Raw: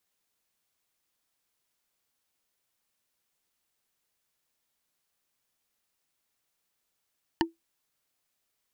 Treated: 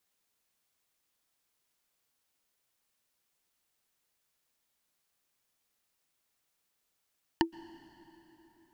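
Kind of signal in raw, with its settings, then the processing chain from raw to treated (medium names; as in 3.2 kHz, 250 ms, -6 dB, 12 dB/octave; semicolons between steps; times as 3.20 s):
wood hit bar, lowest mode 331 Hz, decay 0.16 s, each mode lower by 0.5 dB, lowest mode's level -19 dB
plate-style reverb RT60 4.4 s, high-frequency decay 0.7×, pre-delay 110 ms, DRR 16.5 dB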